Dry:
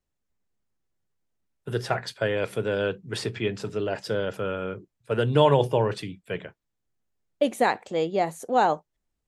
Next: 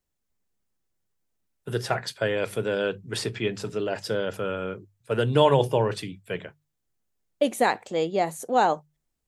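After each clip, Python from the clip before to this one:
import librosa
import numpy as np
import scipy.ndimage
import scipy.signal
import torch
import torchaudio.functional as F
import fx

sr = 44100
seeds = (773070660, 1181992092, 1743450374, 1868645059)

y = fx.high_shelf(x, sr, hz=6100.0, db=6.5)
y = fx.hum_notches(y, sr, base_hz=50, count=3)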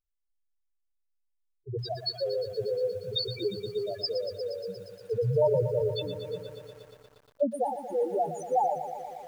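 y = fx.spec_topn(x, sr, count=2)
y = fx.band_shelf(y, sr, hz=4200.0, db=13.5, octaves=1.7)
y = fx.echo_crushed(y, sr, ms=118, feedback_pct=80, bits=9, wet_db=-11)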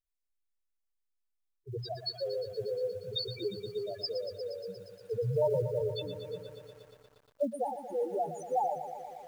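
y = fx.block_float(x, sr, bits=7)
y = y * 10.0 ** (-4.5 / 20.0)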